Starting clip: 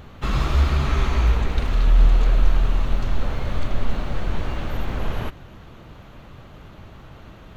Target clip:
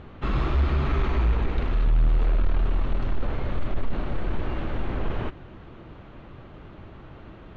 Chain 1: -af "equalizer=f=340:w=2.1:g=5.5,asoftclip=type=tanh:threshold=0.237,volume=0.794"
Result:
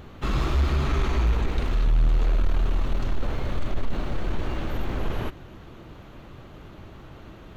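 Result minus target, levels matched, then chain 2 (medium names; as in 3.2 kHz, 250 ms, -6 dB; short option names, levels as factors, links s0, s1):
4 kHz band +4.5 dB
-af "lowpass=3000,equalizer=f=340:w=2.1:g=5.5,asoftclip=type=tanh:threshold=0.237,volume=0.794"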